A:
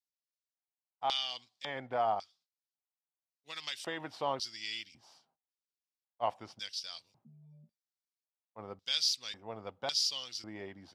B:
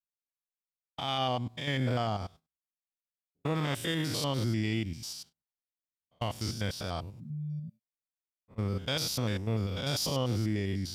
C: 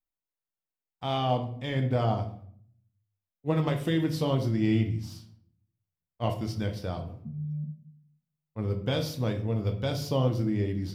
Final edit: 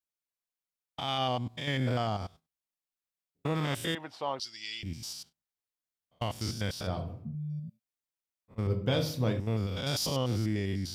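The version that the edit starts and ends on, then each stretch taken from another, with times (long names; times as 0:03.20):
B
0:03.95–0:04.83: punch in from A
0:06.87–0:07.35: punch in from C
0:08.67–0:09.40: punch in from C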